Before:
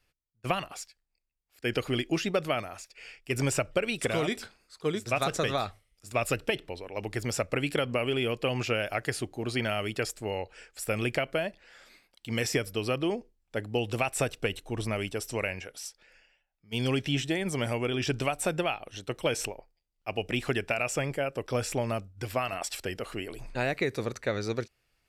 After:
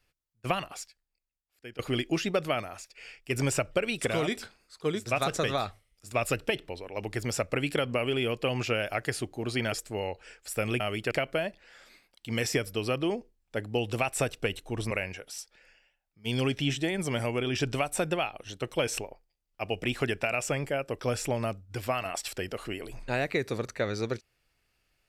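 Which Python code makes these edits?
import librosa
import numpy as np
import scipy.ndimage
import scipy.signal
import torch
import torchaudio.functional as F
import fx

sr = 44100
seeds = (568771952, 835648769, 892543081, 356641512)

y = fx.edit(x, sr, fx.fade_out_to(start_s=0.81, length_s=0.98, floor_db=-21.5),
    fx.move(start_s=9.72, length_s=0.31, to_s=11.11),
    fx.cut(start_s=14.91, length_s=0.47), tone=tone)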